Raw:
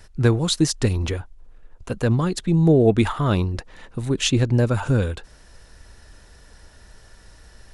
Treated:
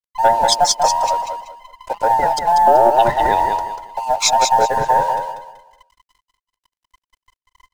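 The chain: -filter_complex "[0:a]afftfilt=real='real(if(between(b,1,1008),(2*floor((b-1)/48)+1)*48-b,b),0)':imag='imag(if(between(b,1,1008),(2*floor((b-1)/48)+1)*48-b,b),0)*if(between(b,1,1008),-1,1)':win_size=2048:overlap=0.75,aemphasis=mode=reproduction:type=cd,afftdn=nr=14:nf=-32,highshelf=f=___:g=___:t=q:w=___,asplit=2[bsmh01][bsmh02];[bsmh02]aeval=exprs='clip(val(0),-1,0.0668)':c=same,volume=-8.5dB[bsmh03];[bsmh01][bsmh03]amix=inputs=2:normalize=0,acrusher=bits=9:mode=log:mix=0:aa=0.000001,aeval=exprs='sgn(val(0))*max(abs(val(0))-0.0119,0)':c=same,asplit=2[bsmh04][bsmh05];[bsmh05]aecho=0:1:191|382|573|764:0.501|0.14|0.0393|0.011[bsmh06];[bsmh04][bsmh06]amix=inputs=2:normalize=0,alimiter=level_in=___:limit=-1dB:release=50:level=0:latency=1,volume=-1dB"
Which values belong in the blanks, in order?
4k, 11, 1.5, 3.5dB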